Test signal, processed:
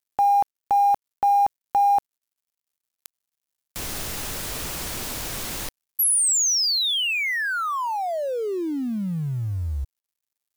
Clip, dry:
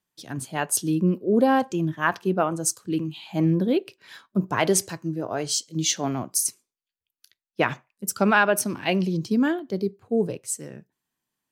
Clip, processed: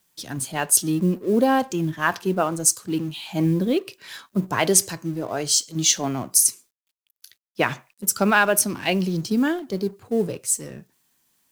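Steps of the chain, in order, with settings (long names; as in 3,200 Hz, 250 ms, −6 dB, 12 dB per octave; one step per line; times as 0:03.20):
mu-law and A-law mismatch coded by mu
high-shelf EQ 3,900 Hz +7.5 dB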